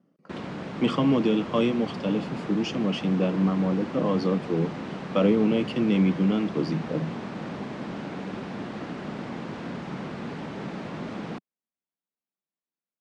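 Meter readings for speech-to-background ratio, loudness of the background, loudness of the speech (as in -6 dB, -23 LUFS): 10.0 dB, -35.5 LUFS, -25.5 LUFS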